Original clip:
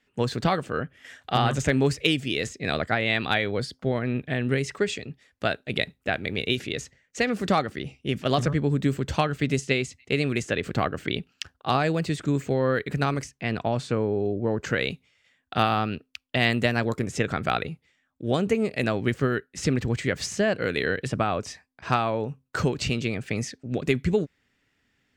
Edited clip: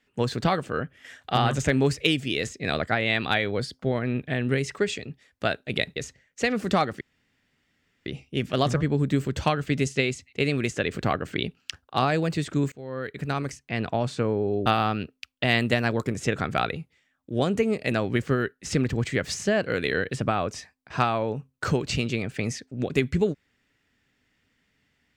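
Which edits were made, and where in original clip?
5.96–6.73 cut
7.78 insert room tone 1.05 s
12.44–13.77 fade in equal-power, from -23.5 dB
14.38–15.58 cut

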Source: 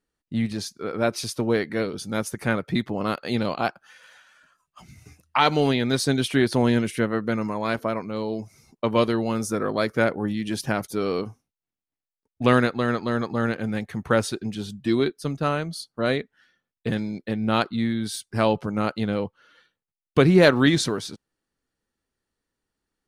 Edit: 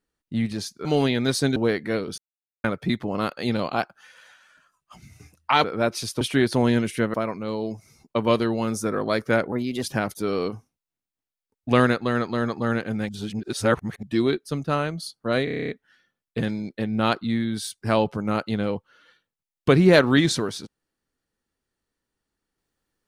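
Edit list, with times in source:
0.85–1.42 swap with 5.5–6.21
2.04–2.5 mute
7.14–7.82 cut
10.2–10.56 speed 117%
13.82–14.76 reverse
16.18 stutter 0.03 s, 9 plays

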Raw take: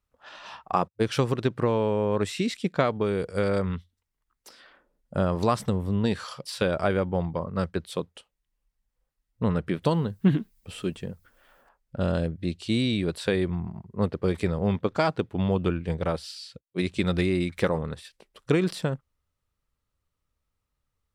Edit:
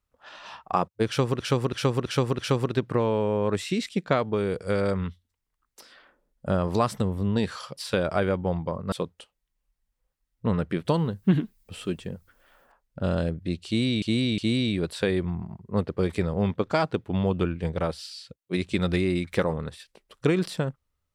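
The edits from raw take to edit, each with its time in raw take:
1.07–1.4 loop, 5 plays
7.6–7.89 cut
12.63–12.99 loop, 3 plays

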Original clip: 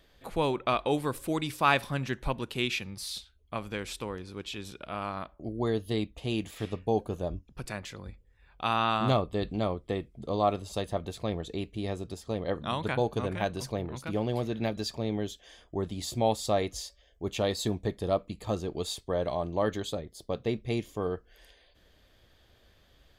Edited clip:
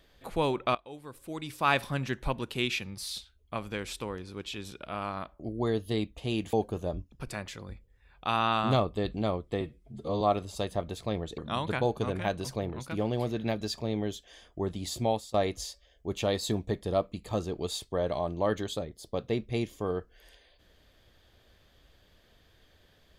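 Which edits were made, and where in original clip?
0.75–1.8 fade in quadratic, from -19 dB
6.53–6.9 cut
9.98–10.38 stretch 1.5×
11.55–12.54 cut
16.19–16.5 fade out, to -20 dB

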